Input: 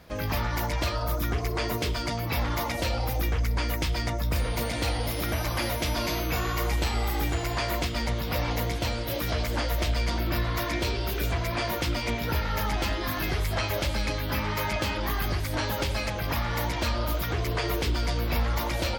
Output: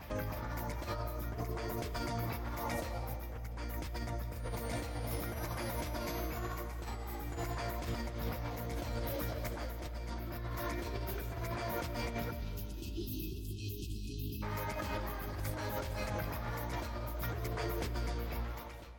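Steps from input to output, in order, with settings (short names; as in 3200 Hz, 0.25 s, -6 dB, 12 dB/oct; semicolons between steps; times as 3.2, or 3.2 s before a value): ending faded out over 1.82 s; bell 4600 Hz -4 dB 0.79 oct; reverse echo 0.306 s -19 dB; dynamic EQ 2900 Hz, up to -7 dB, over -50 dBFS, Q 1.5; negative-ratio compressor -32 dBFS, ratio -1; spectral delete 12.31–14.43, 420–2500 Hz; on a send at -10 dB: reverb RT60 2.2 s, pre-delay 0.12 s; on the sum: gain -7 dB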